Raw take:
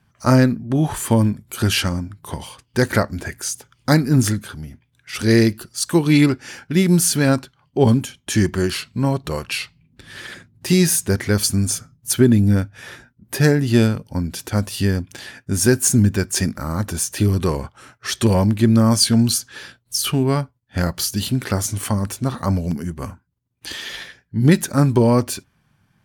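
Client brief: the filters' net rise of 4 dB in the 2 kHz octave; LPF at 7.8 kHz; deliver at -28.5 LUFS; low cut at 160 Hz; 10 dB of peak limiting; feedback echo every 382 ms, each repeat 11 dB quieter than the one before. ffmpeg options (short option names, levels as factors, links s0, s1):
-af "highpass=160,lowpass=7800,equalizer=f=2000:t=o:g=5,alimiter=limit=0.316:level=0:latency=1,aecho=1:1:382|764|1146:0.282|0.0789|0.0221,volume=0.531"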